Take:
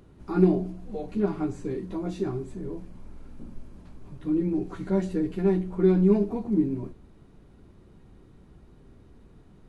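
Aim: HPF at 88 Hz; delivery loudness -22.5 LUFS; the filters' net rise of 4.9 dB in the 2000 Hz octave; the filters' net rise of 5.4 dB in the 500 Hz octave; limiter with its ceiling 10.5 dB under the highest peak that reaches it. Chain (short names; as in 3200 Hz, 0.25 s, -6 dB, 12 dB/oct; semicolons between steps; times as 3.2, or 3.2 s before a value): HPF 88 Hz; bell 500 Hz +8 dB; bell 2000 Hz +6 dB; gain +4 dB; limiter -10.5 dBFS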